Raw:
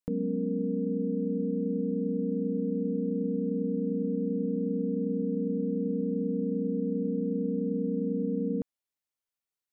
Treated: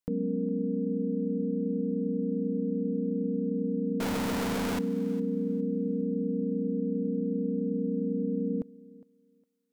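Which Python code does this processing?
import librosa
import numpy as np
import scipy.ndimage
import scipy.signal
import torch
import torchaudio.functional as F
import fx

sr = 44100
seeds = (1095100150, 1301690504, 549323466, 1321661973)

y = fx.clip_1bit(x, sr, at=(4.0, 4.79))
y = fx.echo_thinned(y, sr, ms=409, feedback_pct=24, hz=220.0, wet_db=-18.5)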